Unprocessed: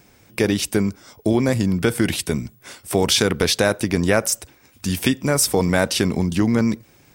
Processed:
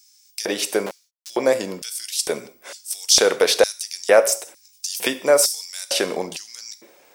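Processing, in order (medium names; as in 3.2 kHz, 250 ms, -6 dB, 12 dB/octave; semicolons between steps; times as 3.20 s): 0.86–1.30 s: Schmitt trigger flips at -22 dBFS; gated-style reverb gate 210 ms falling, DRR 11 dB; LFO high-pass square 1.1 Hz 530–5400 Hz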